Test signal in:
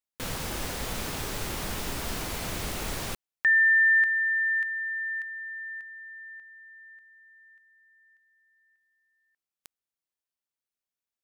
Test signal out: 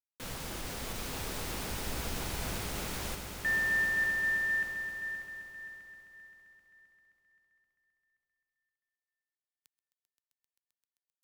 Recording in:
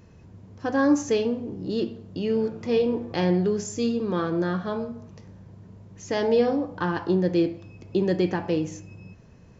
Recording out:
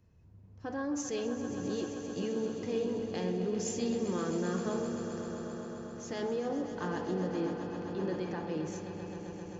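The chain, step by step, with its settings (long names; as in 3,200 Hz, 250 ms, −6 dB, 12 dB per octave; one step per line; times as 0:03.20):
brickwall limiter −22 dBFS
on a send: echo that builds up and dies away 131 ms, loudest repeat 5, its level −11 dB
on the sum: multiband upward and downward expander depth 40%
level −6 dB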